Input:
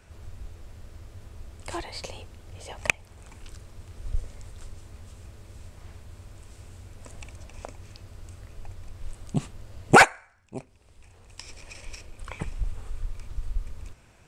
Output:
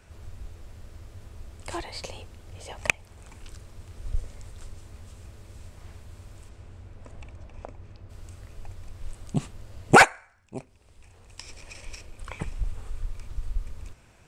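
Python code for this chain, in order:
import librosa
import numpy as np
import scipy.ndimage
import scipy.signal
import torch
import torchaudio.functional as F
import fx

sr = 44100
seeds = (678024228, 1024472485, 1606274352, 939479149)

y = fx.lowpass(x, sr, hz=fx.line((6.48, 2400.0), (8.09, 1100.0)), slope=6, at=(6.48, 8.09), fade=0.02)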